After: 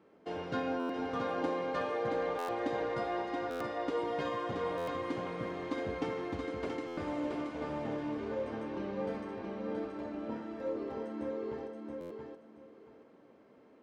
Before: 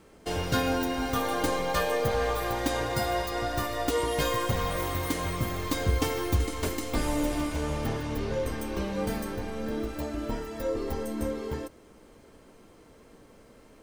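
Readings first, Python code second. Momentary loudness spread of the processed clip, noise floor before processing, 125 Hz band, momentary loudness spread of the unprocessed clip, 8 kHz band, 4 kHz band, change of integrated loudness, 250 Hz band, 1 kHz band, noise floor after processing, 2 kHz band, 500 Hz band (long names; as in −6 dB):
8 LU, −55 dBFS, −15.0 dB, 7 LU, below −20 dB, −14.0 dB, −7.0 dB, −5.5 dB, −6.5 dB, −60 dBFS, −9.0 dB, −4.5 dB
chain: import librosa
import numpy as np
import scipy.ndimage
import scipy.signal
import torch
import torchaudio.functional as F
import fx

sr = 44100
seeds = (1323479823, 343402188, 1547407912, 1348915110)

y = scipy.signal.sosfilt(scipy.signal.butter(2, 210.0, 'highpass', fs=sr, output='sos'), x)
y = fx.spacing_loss(y, sr, db_at_10k=31)
y = fx.echo_feedback(y, sr, ms=676, feedback_pct=22, wet_db=-4.5)
y = fx.buffer_glitch(y, sr, at_s=(0.79, 2.38, 3.5, 4.77, 6.87, 12.0), block=512, repeats=8)
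y = y * 10.0 ** (-4.5 / 20.0)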